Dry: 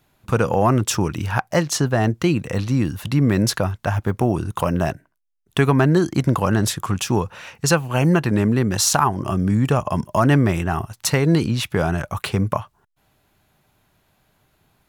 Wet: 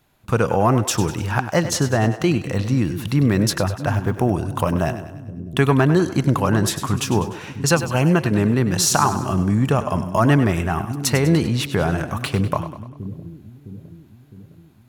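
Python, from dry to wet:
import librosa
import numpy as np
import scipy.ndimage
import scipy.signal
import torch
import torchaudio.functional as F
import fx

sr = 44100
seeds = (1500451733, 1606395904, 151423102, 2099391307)

y = fx.echo_split(x, sr, split_hz=360.0, low_ms=660, high_ms=99, feedback_pct=52, wet_db=-11.5)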